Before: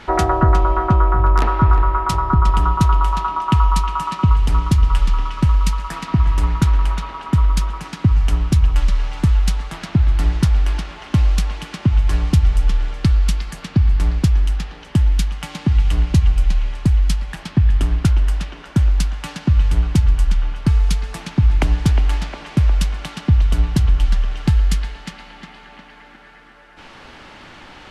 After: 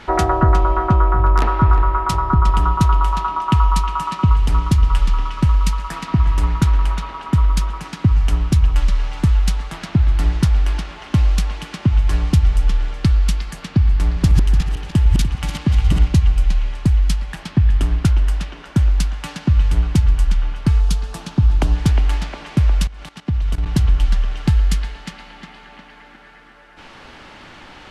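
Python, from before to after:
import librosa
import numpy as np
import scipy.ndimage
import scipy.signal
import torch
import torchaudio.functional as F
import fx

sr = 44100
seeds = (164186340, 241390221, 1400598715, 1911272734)

y = fx.reverse_delay_fb(x, sr, ms=148, feedback_pct=43, wet_db=-4, at=(14.02, 16.08))
y = fx.peak_eq(y, sr, hz=2100.0, db=-7.5, octaves=0.64, at=(20.8, 21.76))
y = fx.level_steps(y, sr, step_db=17, at=(22.87, 23.66))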